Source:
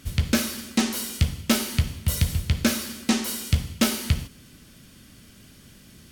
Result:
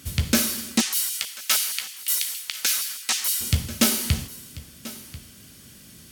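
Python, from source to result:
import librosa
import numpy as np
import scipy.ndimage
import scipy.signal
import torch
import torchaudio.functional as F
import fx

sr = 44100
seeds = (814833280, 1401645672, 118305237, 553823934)

y = scipy.signal.sosfilt(scipy.signal.butter(2, 57.0, 'highpass', fs=sr, output='sos'), x)
y = fx.high_shelf(y, sr, hz=5200.0, db=9.0)
y = y + 10.0 ** (-17.5 / 20.0) * np.pad(y, (int(1039 * sr / 1000.0), 0))[:len(y)]
y = fx.filter_lfo_highpass(y, sr, shape='saw_down', hz=6.4, low_hz=880.0, high_hz=3200.0, q=0.94, at=(0.8, 3.4), fade=0.02)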